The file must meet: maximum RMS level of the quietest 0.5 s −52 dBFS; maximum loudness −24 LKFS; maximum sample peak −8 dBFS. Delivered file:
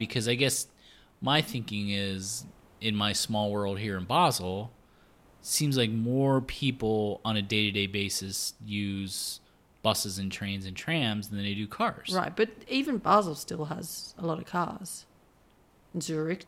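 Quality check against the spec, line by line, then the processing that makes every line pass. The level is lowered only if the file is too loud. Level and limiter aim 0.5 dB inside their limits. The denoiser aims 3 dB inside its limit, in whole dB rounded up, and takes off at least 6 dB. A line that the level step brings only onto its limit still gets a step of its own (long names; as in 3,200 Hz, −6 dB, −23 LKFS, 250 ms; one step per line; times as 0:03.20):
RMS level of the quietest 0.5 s −62 dBFS: in spec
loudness −29.5 LKFS: in spec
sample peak −9.0 dBFS: in spec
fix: no processing needed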